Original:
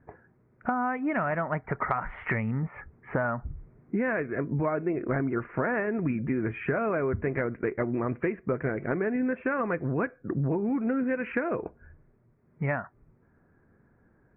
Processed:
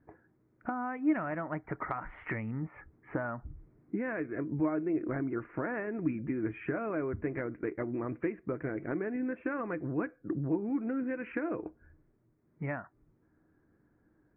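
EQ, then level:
parametric band 310 Hz +13 dB 0.2 octaves
−8.0 dB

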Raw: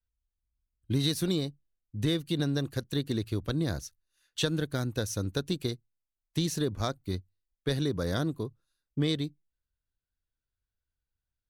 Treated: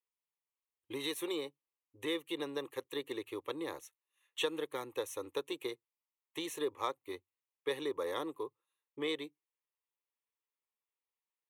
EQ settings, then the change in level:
high-pass filter 710 Hz 12 dB per octave
high-shelf EQ 2,100 Hz −11.5 dB
phaser with its sweep stopped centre 1,000 Hz, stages 8
+7.5 dB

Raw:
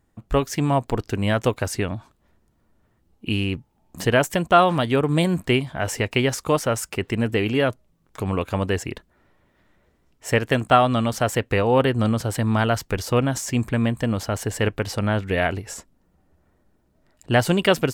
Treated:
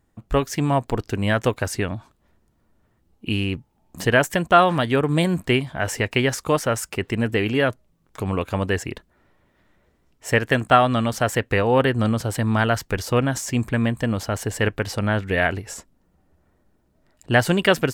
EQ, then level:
dynamic equaliser 1,700 Hz, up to +5 dB, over −37 dBFS, Q 3
0.0 dB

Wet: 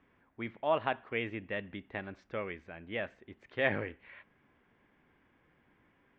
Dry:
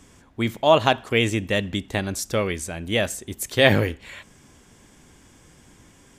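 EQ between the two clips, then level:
transistor ladder low-pass 2,700 Hz, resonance 30%
high-frequency loss of the air 70 metres
low-shelf EQ 150 Hz −10 dB
−6.5 dB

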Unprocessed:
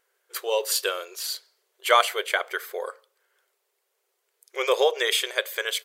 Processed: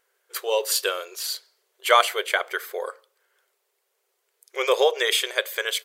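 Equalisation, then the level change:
mains-hum notches 50/100/150/200/250/300/350 Hz
+1.5 dB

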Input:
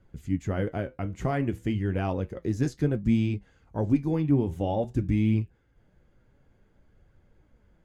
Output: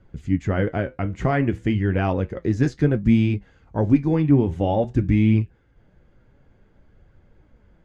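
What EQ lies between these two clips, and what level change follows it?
dynamic equaliser 1,800 Hz, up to +4 dB, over −52 dBFS, Q 1.5
high-frequency loss of the air 80 metres
+6.5 dB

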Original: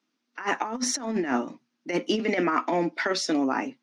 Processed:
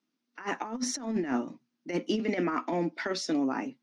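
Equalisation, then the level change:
low-shelf EQ 290 Hz +10 dB
parametric band 5,200 Hz +2 dB 1.5 octaves
−8.0 dB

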